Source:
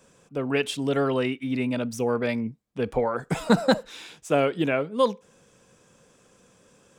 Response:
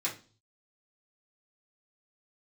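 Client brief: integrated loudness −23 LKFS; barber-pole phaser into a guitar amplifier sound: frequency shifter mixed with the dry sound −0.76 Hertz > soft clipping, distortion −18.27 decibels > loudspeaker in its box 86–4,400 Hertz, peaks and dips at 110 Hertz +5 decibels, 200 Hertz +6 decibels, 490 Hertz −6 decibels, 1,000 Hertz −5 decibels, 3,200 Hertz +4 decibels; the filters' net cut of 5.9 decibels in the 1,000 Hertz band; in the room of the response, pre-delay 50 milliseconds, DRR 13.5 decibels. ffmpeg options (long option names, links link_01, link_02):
-filter_complex "[0:a]equalizer=frequency=1000:width_type=o:gain=-5.5,asplit=2[link_01][link_02];[1:a]atrim=start_sample=2205,adelay=50[link_03];[link_02][link_03]afir=irnorm=-1:irlink=0,volume=-18.5dB[link_04];[link_01][link_04]amix=inputs=2:normalize=0,asplit=2[link_05][link_06];[link_06]afreqshift=-0.76[link_07];[link_05][link_07]amix=inputs=2:normalize=1,asoftclip=threshold=-17dB,highpass=86,equalizer=frequency=110:width_type=q:width=4:gain=5,equalizer=frequency=200:width_type=q:width=4:gain=6,equalizer=frequency=490:width_type=q:width=4:gain=-6,equalizer=frequency=1000:width_type=q:width=4:gain=-5,equalizer=frequency=3200:width_type=q:width=4:gain=4,lowpass=frequency=4400:width=0.5412,lowpass=frequency=4400:width=1.3066,volume=8.5dB"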